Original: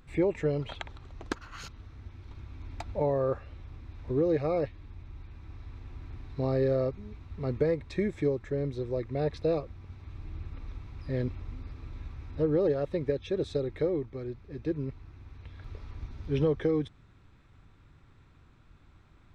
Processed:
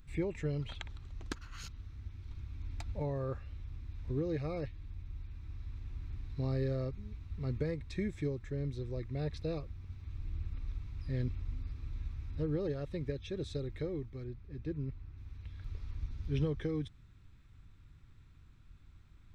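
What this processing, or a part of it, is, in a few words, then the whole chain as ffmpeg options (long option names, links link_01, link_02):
smiley-face EQ: -filter_complex "[0:a]lowshelf=frequency=110:gain=7,equalizer=frequency=630:width_type=o:width=2.1:gain=-9,highshelf=frequency=5900:gain=4.5,asettb=1/sr,asplit=3[link_01][link_02][link_03];[link_01]atrim=end=14.244[link_04];[link_02]atrim=start=14.24:end=15.18,asetpts=PTS-STARTPTS,afade=type=in:duration=0.004:curve=qsin,afade=type=out:start_time=0.936:duration=0.004:curve=qsin,highshelf=frequency=3800:gain=-8[link_05];[link_03]atrim=start=15.176[link_06];[link_04][link_05]acrossfade=duration=0.004:curve1=hsin:curve2=qsin[link_07];[link_07][link_06]acrossfade=duration=0.004:curve1=qsin:curve2=hsin,volume=-4dB"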